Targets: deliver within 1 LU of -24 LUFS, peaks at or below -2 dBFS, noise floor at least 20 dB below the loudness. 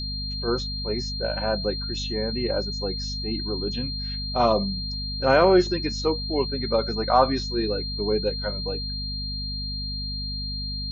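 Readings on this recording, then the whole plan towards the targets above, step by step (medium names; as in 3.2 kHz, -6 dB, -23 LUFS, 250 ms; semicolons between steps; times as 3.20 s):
hum 50 Hz; highest harmonic 250 Hz; hum level -30 dBFS; steady tone 4.2 kHz; tone level -31 dBFS; loudness -25.5 LUFS; peak level -5.5 dBFS; loudness target -24.0 LUFS
-> de-hum 50 Hz, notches 5; band-stop 4.2 kHz, Q 30; trim +1.5 dB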